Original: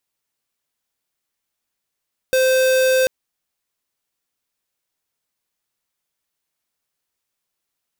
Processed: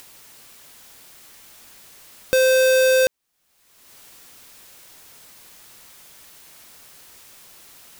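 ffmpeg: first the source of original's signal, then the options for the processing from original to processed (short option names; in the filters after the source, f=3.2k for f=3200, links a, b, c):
-f lavfi -i "aevalsrc='0.168*(2*lt(mod(519*t,1),0.5)-1)':d=0.74:s=44100"
-af "acompressor=mode=upward:threshold=-21dB:ratio=2.5"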